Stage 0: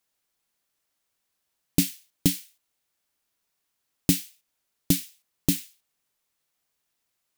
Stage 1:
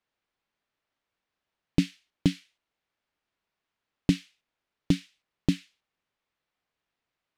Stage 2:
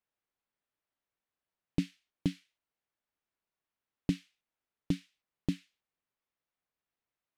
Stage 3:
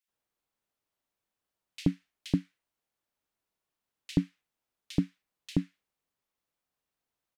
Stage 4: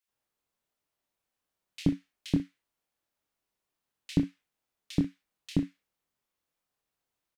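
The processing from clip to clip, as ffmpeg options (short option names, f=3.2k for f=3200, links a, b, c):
-af "lowpass=3k"
-af "equalizer=f=4.6k:w=0.45:g=-3,volume=-7.5dB"
-filter_complex "[0:a]acrossover=split=1900[a][b];[a]adelay=80[c];[c][b]amix=inputs=2:normalize=0,volume=4dB"
-af "aecho=1:1:25|61:0.531|0.168"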